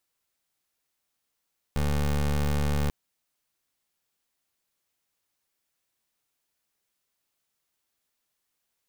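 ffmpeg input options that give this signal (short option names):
-f lavfi -i "aevalsrc='0.0562*(2*lt(mod(72.9*t,1),0.22)-1)':d=1.14:s=44100"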